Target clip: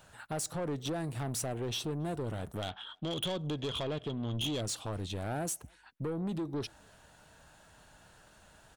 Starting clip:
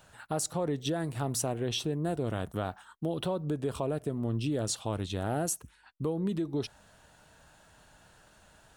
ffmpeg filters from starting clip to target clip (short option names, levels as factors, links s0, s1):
-filter_complex "[0:a]asettb=1/sr,asplit=3[s0][s1][s2];[s0]atrim=end=2.624[s3];[s1]atrim=start=2.62:end=4.61,asetpts=PTS-STARTPTS,afade=t=in:d=0.004:c=qsin,afade=t=out:st=1.986:d=0.004:c=qsin,lowpass=f=3300:t=q:w=15[s4];[s2]atrim=start=4.606[s5];[s3][s4]acrossfade=d=0.004:c1=hsin:c2=qsin[s6];[s6][s5]acrossfade=d=0.004:c1=qsin:c2=hsin,asoftclip=type=tanh:threshold=0.0299,asplit=2[s7][s8];[s8]adelay=280,highpass=300,lowpass=3400,asoftclip=type=hard:threshold=0.0112,volume=0.0447[s9];[s7][s9]amix=inputs=2:normalize=0"